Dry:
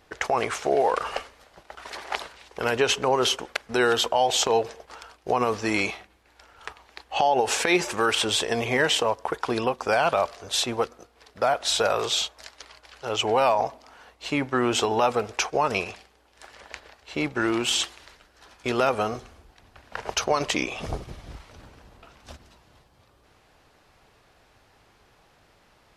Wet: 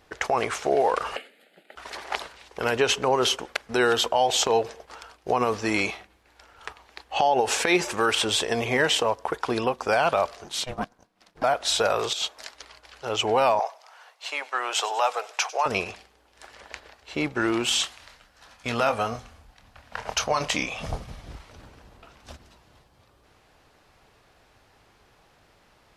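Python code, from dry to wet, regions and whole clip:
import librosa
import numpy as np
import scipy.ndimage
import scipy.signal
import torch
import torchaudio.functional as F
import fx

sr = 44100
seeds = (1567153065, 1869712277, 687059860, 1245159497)

y = fx.chain(x, sr, fx.brickwall_highpass(low_hz=160.0),
    fx.fixed_phaser(hz=2500.0, stages=4), at=(1.16, 1.76))
y = fx.chain(y, sr, fx.transient(attack_db=-4, sustain_db=-8),
    fx.ring_mod(carrier_hz=250.0), at=(10.44, 11.44))
y = fx.chain(y, sr, fx.over_compress(threshold_db=-28.0, ratio=-0.5),
    fx.peak_eq(hz=64.0, db=-13.0, octaves=1.7), at=(12.13, 12.54))
y = fx.chain(y, sr, fx.highpass(hz=600.0, slope=24),
    fx.echo_wet_highpass(ms=98, feedback_pct=62, hz=3800.0, wet_db=-14.5), at=(13.59, 15.66))
y = fx.chain(y, sr, fx.peak_eq(hz=370.0, db=-14.0, octaves=0.37),
    fx.doubler(ms=26.0, db=-9), at=(17.69, 21.2))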